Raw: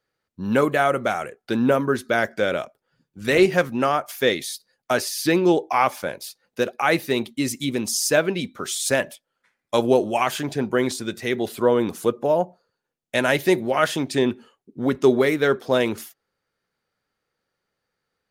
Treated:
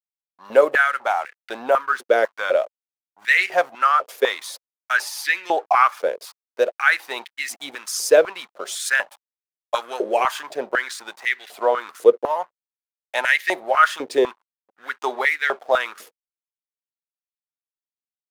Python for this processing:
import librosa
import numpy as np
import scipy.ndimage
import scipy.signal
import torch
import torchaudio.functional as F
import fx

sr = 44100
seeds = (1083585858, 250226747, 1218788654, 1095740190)

y = fx.backlash(x, sr, play_db=-34.5)
y = fx.filter_held_highpass(y, sr, hz=4.0, low_hz=470.0, high_hz=1900.0)
y = F.gain(torch.from_numpy(y), -2.0).numpy()